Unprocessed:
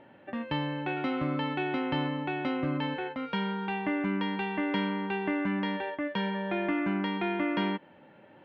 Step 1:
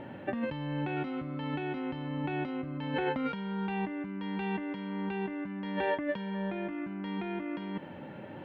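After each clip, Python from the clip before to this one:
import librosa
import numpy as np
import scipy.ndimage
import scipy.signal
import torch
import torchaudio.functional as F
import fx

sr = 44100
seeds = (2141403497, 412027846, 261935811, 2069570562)

y = fx.low_shelf(x, sr, hz=280.0, db=9.0)
y = fx.over_compress(y, sr, threshold_db=-35.0, ratio=-1.0)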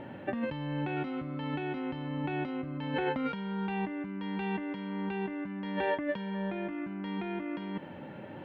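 y = x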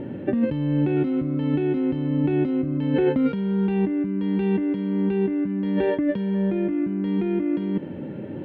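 y = fx.low_shelf_res(x, sr, hz=570.0, db=10.5, q=1.5)
y = y * librosa.db_to_amplitude(1.0)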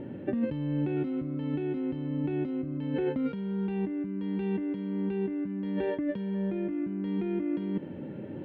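y = fx.rider(x, sr, range_db=3, speed_s=2.0)
y = y * librosa.db_to_amplitude(-8.5)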